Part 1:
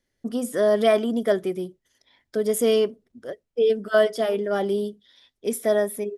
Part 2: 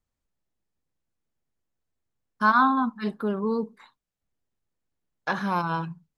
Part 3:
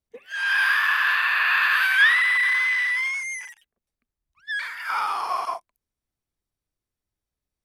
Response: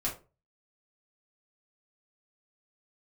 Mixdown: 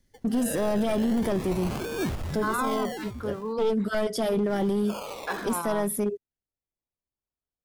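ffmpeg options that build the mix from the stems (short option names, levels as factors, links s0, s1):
-filter_complex "[0:a]bass=f=250:g=14,treble=f=4000:g=6,aeval=exprs='clip(val(0),-1,0.1)':c=same,volume=1.06[s0];[1:a]highpass=260,volume=0.631,asplit=2[s1][s2];[2:a]acrusher=samples=31:mix=1:aa=0.000001:lfo=1:lforange=18.6:lforate=0.37,volume=0.266[s3];[s2]apad=whole_len=272199[s4];[s0][s4]sidechaincompress=threshold=0.0398:ratio=8:attack=16:release=1260[s5];[s5][s1][s3]amix=inputs=3:normalize=0,acrossover=split=320[s6][s7];[s7]acompressor=threshold=0.0708:ratio=2.5[s8];[s6][s8]amix=inputs=2:normalize=0,alimiter=limit=0.119:level=0:latency=1:release=11"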